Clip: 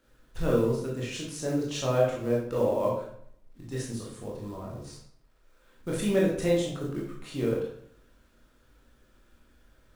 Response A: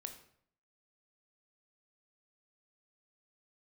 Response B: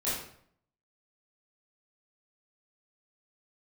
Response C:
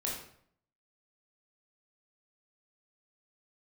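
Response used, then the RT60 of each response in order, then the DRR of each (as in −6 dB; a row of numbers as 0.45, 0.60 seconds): C; 0.65, 0.60, 0.60 seconds; 6.0, −11.0, −4.0 decibels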